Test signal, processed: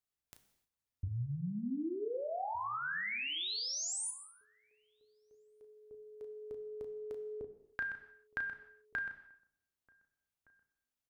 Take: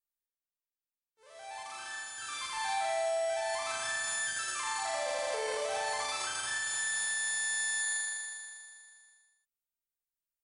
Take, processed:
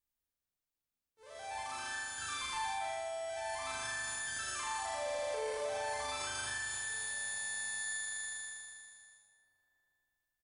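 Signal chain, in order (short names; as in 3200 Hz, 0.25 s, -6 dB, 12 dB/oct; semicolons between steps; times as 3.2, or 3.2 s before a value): low shelf 260 Hz +11 dB; compressor 6:1, threshold -38 dBFS; doubler 34 ms -8 dB; outdoor echo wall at 260 m, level -26 dB; non-linear reverb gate 0.33 s falling, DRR 8 dB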